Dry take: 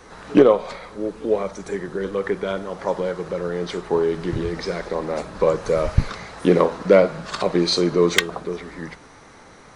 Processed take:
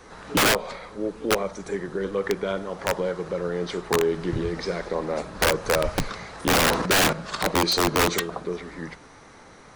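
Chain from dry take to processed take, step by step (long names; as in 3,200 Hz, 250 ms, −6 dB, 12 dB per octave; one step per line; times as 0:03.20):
0:06.35–0:07.13: transient designer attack −4 dB, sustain +11 dB
wrap-around overflow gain 11.5 dB
level −2 dB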